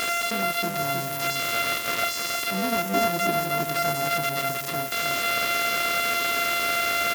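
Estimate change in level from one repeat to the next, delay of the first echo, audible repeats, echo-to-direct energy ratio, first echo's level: -9.0 dB, 0.315 s, 2, -4.0 dB, -4.5 dB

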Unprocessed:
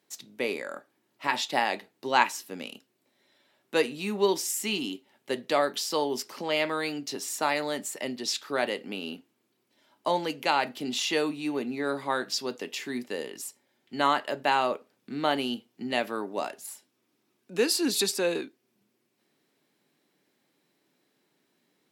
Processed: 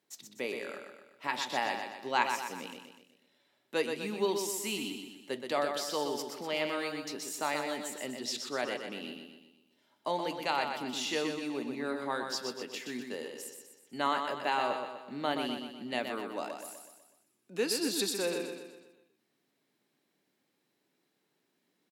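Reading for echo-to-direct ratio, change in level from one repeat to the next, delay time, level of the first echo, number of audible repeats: -5.0 dB, -6.0 dB, 0.124 s, -6.0 dB, 5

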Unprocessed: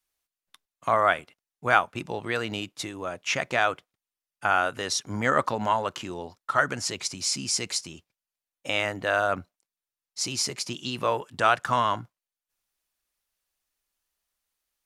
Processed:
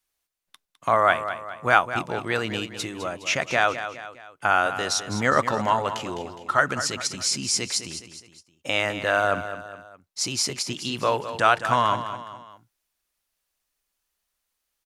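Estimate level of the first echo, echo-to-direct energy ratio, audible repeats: -11.0 dB, -10.0 dB, 3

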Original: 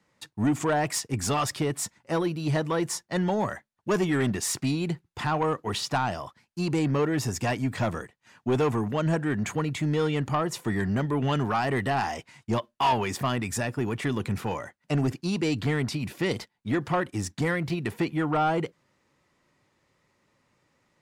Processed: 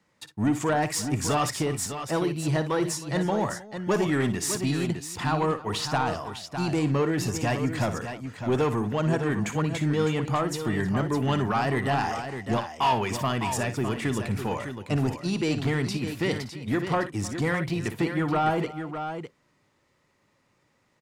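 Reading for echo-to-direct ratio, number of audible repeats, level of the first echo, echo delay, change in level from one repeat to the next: -6.5 dB, 3, -11.5 dB, 58 ms, no steady repeat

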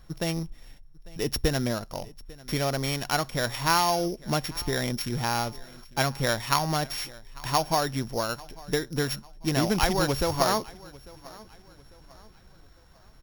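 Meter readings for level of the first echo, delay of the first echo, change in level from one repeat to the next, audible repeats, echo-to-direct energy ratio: -22.0 dB, 0.847 s, -8.0 dB, 2, -21.5 dB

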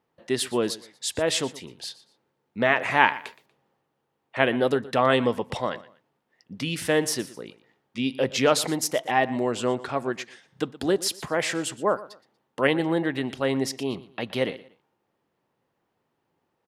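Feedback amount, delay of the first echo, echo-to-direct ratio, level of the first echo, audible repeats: 28%, 0.119 s, -18.0 dB, -18.5 dB, 2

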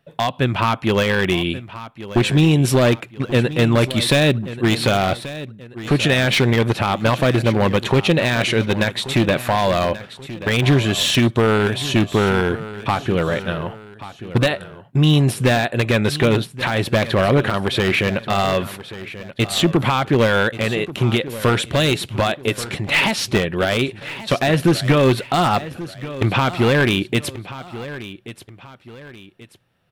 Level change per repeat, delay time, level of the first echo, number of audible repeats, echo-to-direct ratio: -8.5 dB, 1.133 s, -15.0 dB, 2, -14.5 dB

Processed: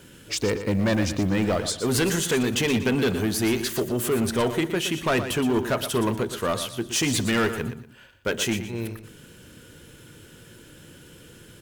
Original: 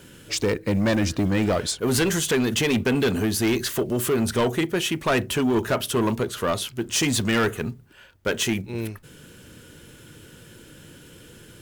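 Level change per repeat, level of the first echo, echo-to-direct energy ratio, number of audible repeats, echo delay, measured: -11.0 dB, -10.5 dB, -10.0 dB, 3, 0.119 s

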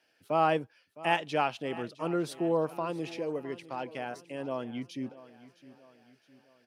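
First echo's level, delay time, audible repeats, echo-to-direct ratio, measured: -17.5 dB, 0.661 s, 3, -16.5 dB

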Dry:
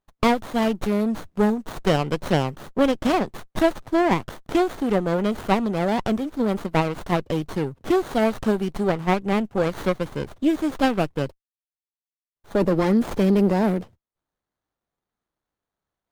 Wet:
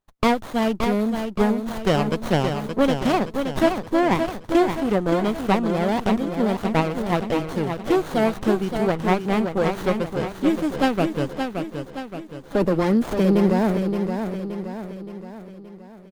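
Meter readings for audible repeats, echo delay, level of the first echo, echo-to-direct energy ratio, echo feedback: 5, 0.572 s, -6.5 dB, -5.0 dB, 51%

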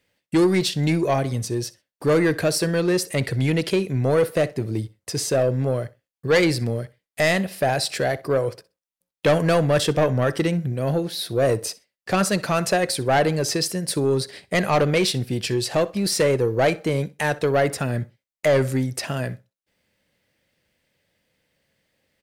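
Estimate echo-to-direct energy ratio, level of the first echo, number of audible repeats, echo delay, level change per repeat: -21.0 dB, -21.0 dB, 2, 63 ms, -14.0 dB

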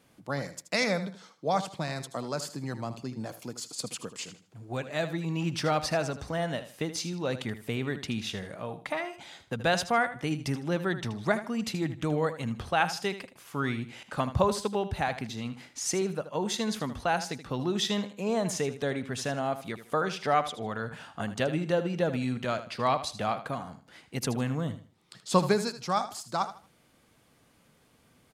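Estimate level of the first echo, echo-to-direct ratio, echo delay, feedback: -12.5 dB, -12.0 dB, 78 ms, 27%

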